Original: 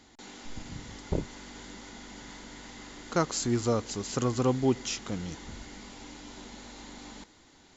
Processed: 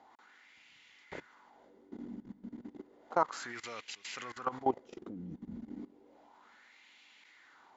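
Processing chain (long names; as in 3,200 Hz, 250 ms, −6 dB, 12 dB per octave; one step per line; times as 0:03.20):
LFO wah 0.32 Hz 210–2,600 Hz, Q 3.3
output level in coarse steps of 18 dB
level +10.5 dB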